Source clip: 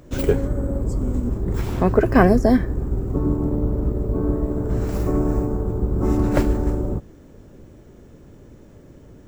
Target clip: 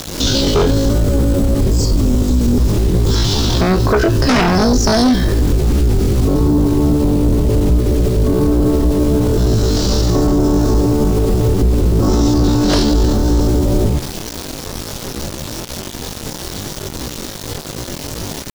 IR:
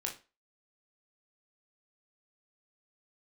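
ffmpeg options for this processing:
-filter_complex "[0:a]acrossover=split=6600[s0][s1];[s1]acompressor=threshold=0.00282:ratio=4:attack=1:release=60[s2];[s0][s2]amix=inputs=2:normalize=0,atempo=0.5,acrossover=split=680|5000[s3][s4][s5];[s4]aexciter=amount=13.8:drive=8.2:freq=3600[s6];[s3][s6][s5]amix=inputs=3:normalize=0,acrusher=bits=6:mix=0:aa=0.000001,aeval=exprs='1.19*sin(PI/2*4.47*val(0)/1.19)':c=same,asplit=2[s7][s8];[1:a]atrim=start_sample=2205[s9];[s8][s9]afir=irnorm=-1:irlink=0,volume=0.376[s10];[s7][s10]amix=inputs=2:normalize=0,alimiter=level_in=1.68:limit=0.891:release=50:level=0:latency=1,volume=0.501"

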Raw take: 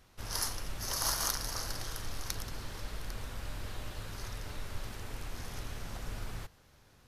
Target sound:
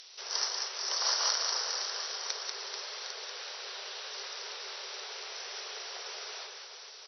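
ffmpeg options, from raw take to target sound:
-filter_complex "[0:a]afftfilt=real='re*between(b*sr/4096,370,6000)':imag='im*between(b*sr/4096,370,6000)':win_size=4096:overlap=0.75,acrossover=split=3100[s0][s1];[s1]acompressor=mode=upward:threshold=0.00631:ratio=2.5[s2];[s0][s2]amix=inputs=2:normalize=0,crystalizer=i=2:c=0,aecho=1:1:190|437|758.1|1176|1718:0.631|0.398|0.251|0.158|0.1"

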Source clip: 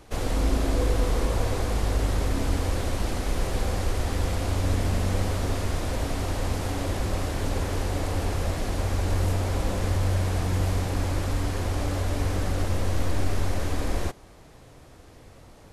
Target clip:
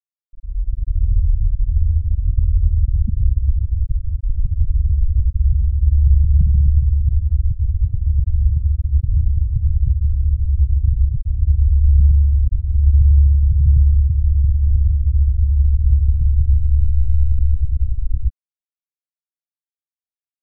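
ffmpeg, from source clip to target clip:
-af "equalizer=f=130:t=o:w=1.5:g=11,dynaudnorm=f=140:g=9:m=3.16,asetrate=33957,aresample=44100,afftfilt=real='re*gte(hypot(re,im),1.41)':imag='im*gte(hypot(re,im),1.41)':win_size=1024:overlap=0.75"

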